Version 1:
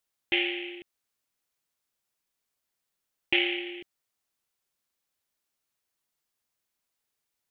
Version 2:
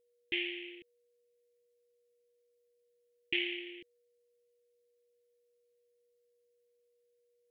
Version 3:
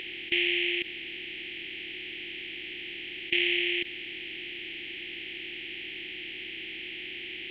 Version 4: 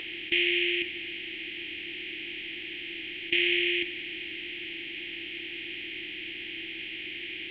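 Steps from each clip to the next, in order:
high-order bell 830 Hz -16 dB; whistle 480 Hz -64 dBFS; trim -8 dB
spectral levelling over time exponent 0.2; trim +3.5 dB
reverberation RT60 3.1 s, pre-delay 3 ms, DRR 4.5 dB

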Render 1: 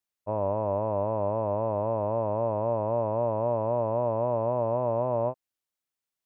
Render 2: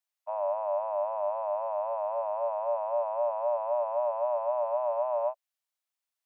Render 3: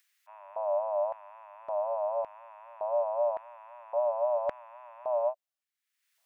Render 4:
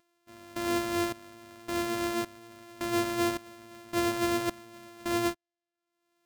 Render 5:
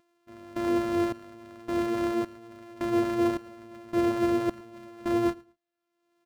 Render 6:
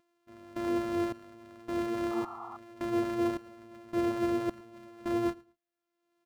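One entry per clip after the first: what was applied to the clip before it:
Chebyshev high-pass 580 Hz, order 8
bass shelf 430 Hz -6 dB; upward compressor, threshold -54 dBFS; LFO high-pass square 0.89 Hz 580–1800 Hz; trim -4.5 dB
sorted samples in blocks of 128 samples
resonances exaggerated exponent 1.5; feedback delay 111 ms, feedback 23%, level -24 dB; trim +3.5 dB
painted sound noise, 2.10–2.57 s, 670–1400 Hz -39 dBFS; trim -4.5 dB

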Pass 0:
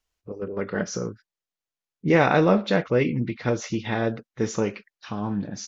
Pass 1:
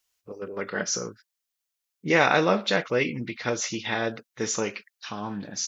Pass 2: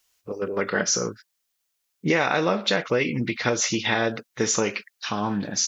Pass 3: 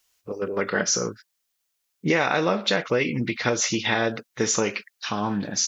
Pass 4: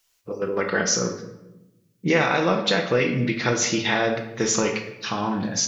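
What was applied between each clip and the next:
tilt EQ +3 dB/octave
compression 6:1, threshold -26 dBFS, peak gain reduction 11 dB; trim +7.5 dB
no audible change
simulated room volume 390 m³, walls mixed, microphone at 0.74 m

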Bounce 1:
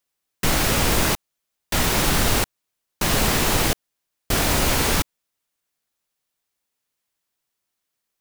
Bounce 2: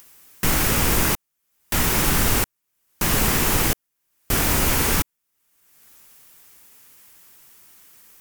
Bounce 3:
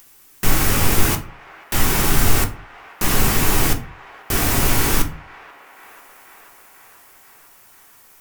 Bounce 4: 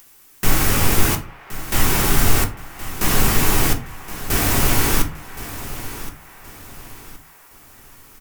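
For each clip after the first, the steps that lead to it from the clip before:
fifteen-band graphic EQ 630 Hz -5 dB, 4 kHz -5 dB, 16 kHz +6 dB; upward compressor, threshold -28 dBFS
feedback echo behind a band-pass 488 ms, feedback 71%, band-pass 1.2 kHz, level -17.5 dB; on a send at -4 dB: reverberation RT60 0.35 s, pre-delay 3 ms
feedback delay 1070 ms, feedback 36%, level -14 dB

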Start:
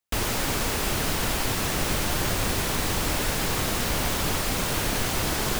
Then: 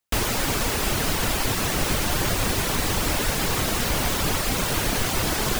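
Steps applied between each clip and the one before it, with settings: reverb removal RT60 0.5 s; trim +3.5 dB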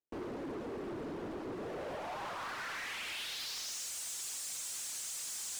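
band-pass sweep 350 Hz -> 7.6 kHz, 1.50–3.90 s; overload inside the chain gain 35.5 dB; trim -3 dB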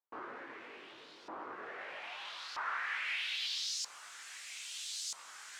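chorus 2.7 Hz, delay 19.5 ms, depth 2.1 ms; LFO band-pass saw up 0.78 Hz 1–4.9 kHz; trim +11.5 dB

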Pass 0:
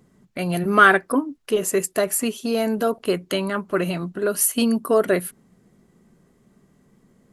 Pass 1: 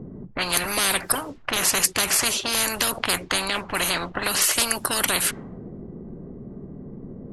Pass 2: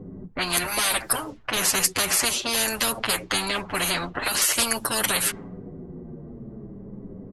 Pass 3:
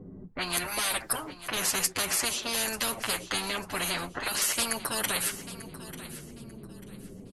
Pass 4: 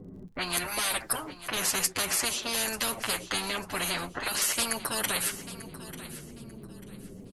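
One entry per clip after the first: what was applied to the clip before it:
level-controlled noise filter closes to 460 Hz, open at -18 dBFS; spectrum-flattening compressor 10:1
endless flanger 7.7 ms -0.55 Hz; trim +2 dB
feedback delay 892 ms, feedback 28%, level -15 dB; trim -6 dB
crackle 46 per s -53 dBFS

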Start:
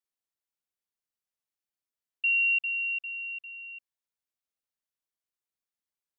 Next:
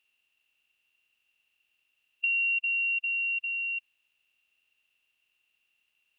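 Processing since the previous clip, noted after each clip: spectral levelling over time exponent 0.6; compression 3:1, threshold -31 dBFS, peak gain reduction 6.5 dB; trim +3.5 dB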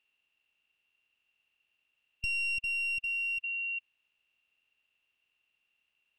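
one-sided wavefolder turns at -27.5 dBFS; low-pass 2.7 kHz 6 dB/octave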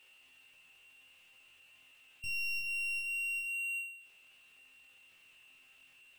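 chord resonator F2 fifth, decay 0.37 s; power-law waveshaper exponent 0.5

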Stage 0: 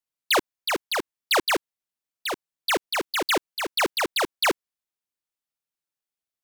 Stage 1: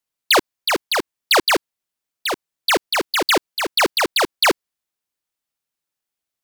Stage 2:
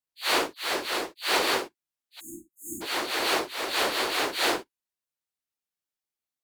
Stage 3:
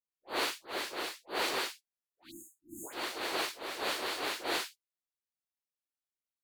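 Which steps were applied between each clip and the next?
dynamic bell 4.6 kHz, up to +4 dB, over -40 dBFS, Q 4.5; trim +6 dB
phase randomisation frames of 200 ms; spectral selection erased 2.20–2.82 s, 350–6400 Hz; Chebyshev shaper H 2 -37 dB, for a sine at -2.5 dBFS; trim -8 dB
phase dispersion highs, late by 125 ms, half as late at 1.3 kHz; trim -8.5 dB

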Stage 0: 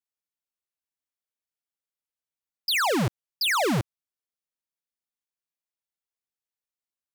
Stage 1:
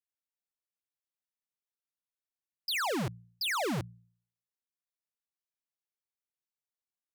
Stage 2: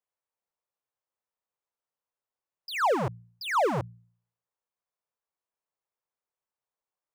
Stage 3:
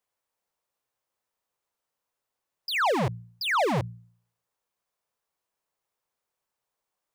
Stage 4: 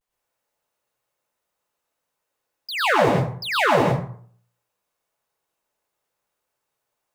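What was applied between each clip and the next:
de-hum 58.06 Hz, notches 3; trim -8 dB
ten-band graphic EQ 125 Hz +4 dB, 250 Hz -4 dB, 500 Hz +9 dB, 1 kHz +9 dB, 4 kHz -5 dB, 16 kHz -11 dB
peak limiter -21.5 dBFS, peak gain reduction 3.5 dB; saturation -28.5 dBFS, distortion -12 dB; trim +7.5 dB
vibrato 0.31 Hz 41 cents; plate-style reverb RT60 0.51 s, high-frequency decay 0.6×, pre-delay 85 ms, DRR -5.5 dB

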